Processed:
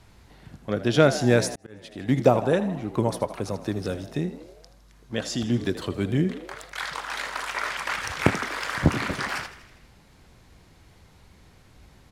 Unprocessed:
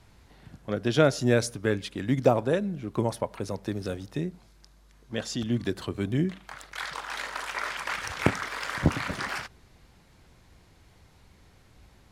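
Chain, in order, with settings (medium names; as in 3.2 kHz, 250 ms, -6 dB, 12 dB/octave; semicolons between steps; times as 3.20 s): frequency-shifting echo 80 ms, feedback 60%, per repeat +64 Hz, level -14.5 dB; 1.55–2.09 s: slow attack 676 ms; trim +3 dB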